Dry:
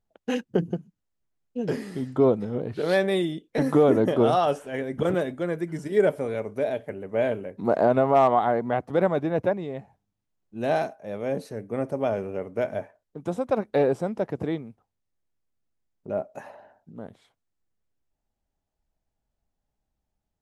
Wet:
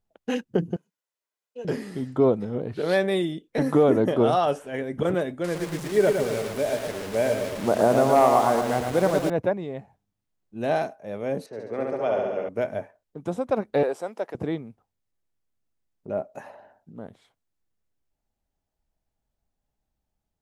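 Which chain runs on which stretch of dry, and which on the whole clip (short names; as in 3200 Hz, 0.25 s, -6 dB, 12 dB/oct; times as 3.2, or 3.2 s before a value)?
0.76–1.65 HPF 590 Hz + comb 2 ms, depth 32%
5.44–9.3 delta modulation 64 kbps, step -31 dBFS + lo-fi delay 0.113 s, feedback 55%, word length 7-bit, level -5 dB
11.46–12.49 three-band isolator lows -13 dB, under 290 Hz, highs -22 dB, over 6600 Hz + flutter echo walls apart 11.7 m, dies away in 1.4 s + mismatched tape noise reduction decoder only
13.83–14.35 HPF 490 Hz + high shelf 6200 Hz +5 dB
whole clip: dry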